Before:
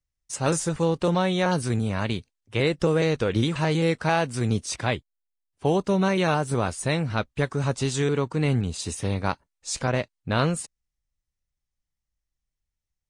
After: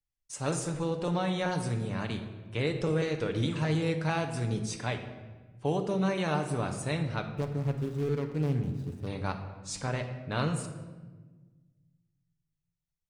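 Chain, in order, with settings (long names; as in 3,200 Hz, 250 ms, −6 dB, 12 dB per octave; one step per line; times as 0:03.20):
0:07.30–0:09.07: running median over 41 samples
on a send: convolution reverb RT60 1.3 s, pre-delay 7 ms, DRR 5 dB
on the sum: level −8.5 dB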